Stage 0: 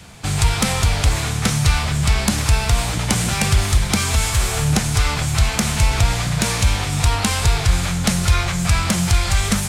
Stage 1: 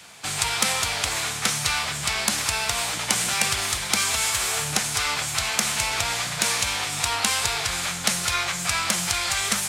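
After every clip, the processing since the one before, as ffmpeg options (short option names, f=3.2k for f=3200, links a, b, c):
-af "highpass=f=980:p=1"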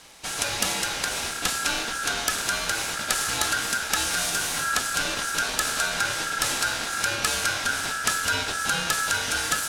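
-af "asubboost=boost=4.5:cutoff=250,aeval=exprs='val(0)*sin(2*PI*1500*n/s)':c=same"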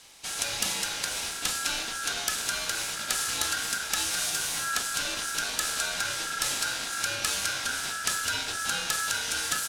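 -filter_complex "[0:a]acrossover=split=2300[a][b];[a]asplit=2[c][d];[d]adelay=37,volume=-5dB[e];[c][e]amix=inputs=2:normalize=0[f];[b]acontrast=71[g];[f][g]amix=inputs=2:normalize=0,volume=-8.5dB"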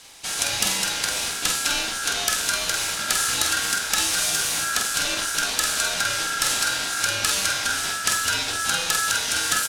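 -filter_complex "[0:a]asplit=2[a][b];[b]adelay=47,volume=-6dB[c];[a][c]amix=inputs=2:normalize=0,volume=5.5dB"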